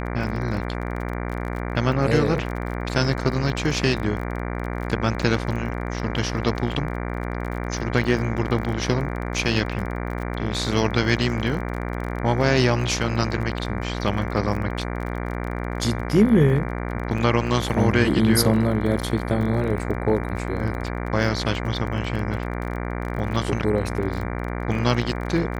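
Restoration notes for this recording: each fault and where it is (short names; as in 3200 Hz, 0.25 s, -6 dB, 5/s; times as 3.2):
buzz 60 Hz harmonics 39 -28 dBFS
crackle 30/s -30 dBFS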